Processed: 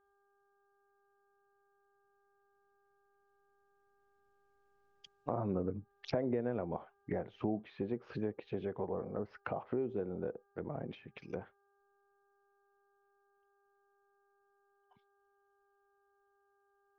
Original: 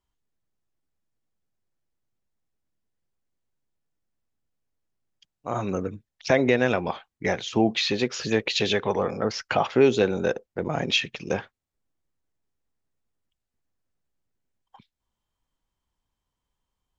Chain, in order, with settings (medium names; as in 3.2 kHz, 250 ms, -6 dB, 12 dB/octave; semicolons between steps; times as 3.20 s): Doppler pass-by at 5.13 s, 14 m/s, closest 14 m; distance through air 57 m; compression 3:1, threshold -35 dBFS, peak gain reduction 13 dB; mains buzz 400 Hz, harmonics 4, -77 dBFS -3 dB/octave; low-pass that closes with the level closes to 830 Hz, closed at -38 dBFS; trim +2 dB